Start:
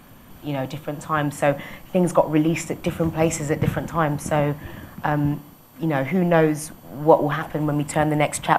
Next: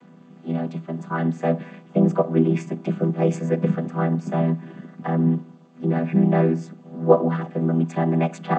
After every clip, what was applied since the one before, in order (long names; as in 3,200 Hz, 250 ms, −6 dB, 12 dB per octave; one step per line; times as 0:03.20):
channel vocoder with a chord as carrier minor triad, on E3
level +1 dB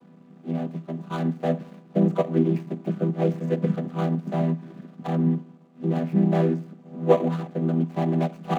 running median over 25 samples
level −2.5 dB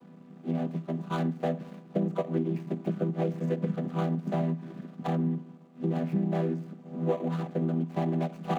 downward compressor 6 to 1, threshold −25 dBFS, peak gain reduction 13 dB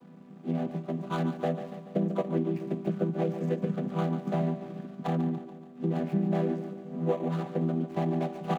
repeating echo 143 ms, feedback 55%, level −11 dB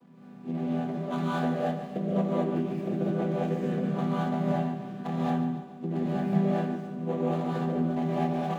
reverb whose tail is shaped and stops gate 250 ms rising, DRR −7 dB
level −4.5 dB